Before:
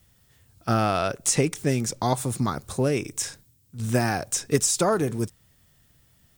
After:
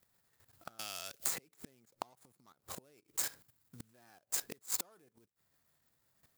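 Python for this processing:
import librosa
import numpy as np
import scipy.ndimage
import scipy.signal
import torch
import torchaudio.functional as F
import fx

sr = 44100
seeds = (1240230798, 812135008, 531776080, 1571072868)

y = scipy.ndimage.median_filter(x, 15, mode='constant')
y = fx.level_steps(y, sr, step_db=15)
y = fx.gate_flip(y, sr, shuts_db=-29.0, range_db=-32)
y = fx.riaa(y, sr, side='recording')
y = fx.band_squash(y, sr, depth_pct=100, at=(0.79, 1.63))
y = y * librosa.db_to_amplitude(2.0)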